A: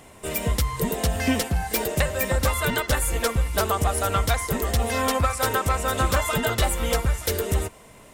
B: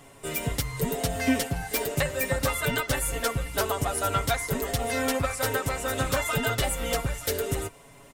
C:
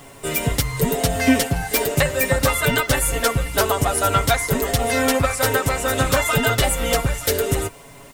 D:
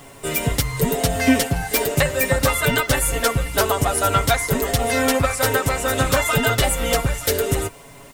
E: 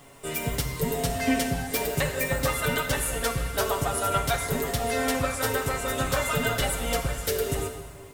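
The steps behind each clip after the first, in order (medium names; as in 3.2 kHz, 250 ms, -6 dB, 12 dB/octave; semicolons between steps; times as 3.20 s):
comb 7.2 ms, depth 74%; trim -4.5 dB
added noise white -64 dBFS; trim +8 dB
no audible change
plate-style reverb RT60 1.7 s, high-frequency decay 0.8×, DRR 4.5 dB; trim -8.5 dB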